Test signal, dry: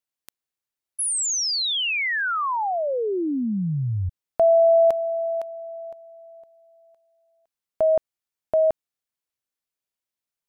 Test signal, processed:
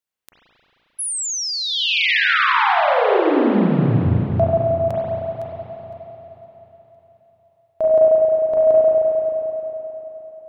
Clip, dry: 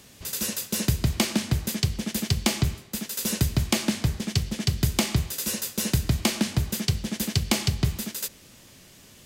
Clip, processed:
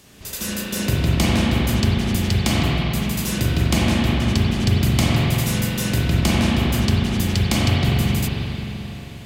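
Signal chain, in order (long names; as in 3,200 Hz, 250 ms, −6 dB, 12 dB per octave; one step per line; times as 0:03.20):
spring reverb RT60 3.7 s, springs 34/44 ms, chirp 60 ms, DRR −7.5 dB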